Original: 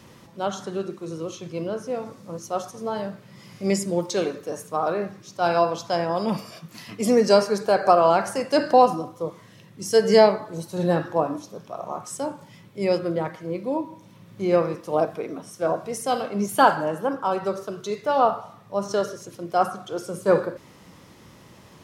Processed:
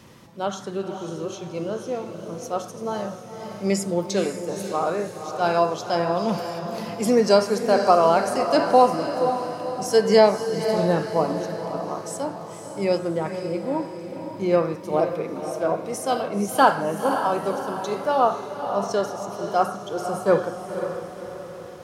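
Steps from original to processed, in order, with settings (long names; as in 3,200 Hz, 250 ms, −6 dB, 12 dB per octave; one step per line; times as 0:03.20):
feedback delay with all-pass diffusion 519 ms, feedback 49%, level −8 dB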